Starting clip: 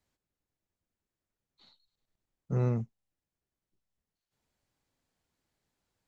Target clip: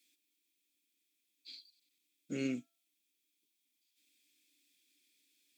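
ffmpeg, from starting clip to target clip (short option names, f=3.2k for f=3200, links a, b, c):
-filter_complex "[0:a]crystalizer=i=4:c=0,asplit=3[a][b][c];[a]bandpass=f=270:t=q:w=8,volume=0dB[d];[b]bandpass=f=2.29k:t=q:w=8,volume=-6dB[e];[c]bandpass=f=3.01k:t=q:w=8,volume=-9dB[f];[d][e][f]amix=inputs=3:normalize=0,aemphasis=mode=production:type=riaa,bandreject=f=309.5:t=h:w=4,bandreject=f=619:t=h:w=4,bandreject=f=928.5:t=h:w=4,bandreject=f=1.238k:t=h:w=4,bandreject=f=1.5475k:t=h:w=4,asetrate=48000,aresample=44100,volume=13.5dB"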